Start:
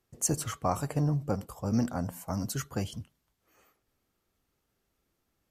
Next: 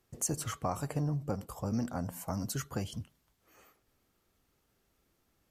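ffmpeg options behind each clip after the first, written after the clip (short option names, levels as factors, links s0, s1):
-af "acompressor=threshold=0.01:ratio=2,volume=1.5"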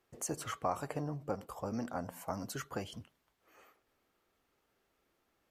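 -af "bass=f=250:g=-11,treble=f=4000:g=-8,volume=1.12"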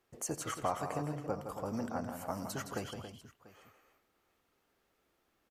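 -af "aecho=1:1:88|165|277|691:0.126|0.398|0.316|0.1"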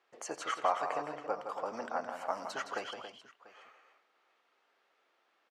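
-af "highpass=610,lowpass=3900,volume=2"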